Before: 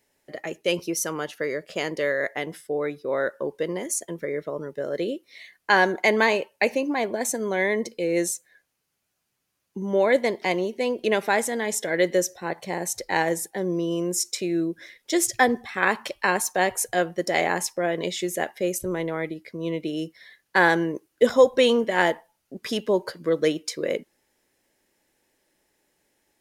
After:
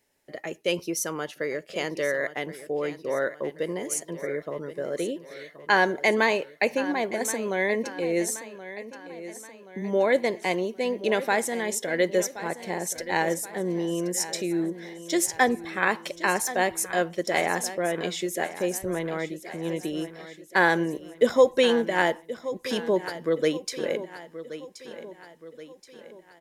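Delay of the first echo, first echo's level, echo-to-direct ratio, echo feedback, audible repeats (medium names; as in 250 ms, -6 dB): 1076 ms, -14.0 dB, -13.0 dB, 49%, 4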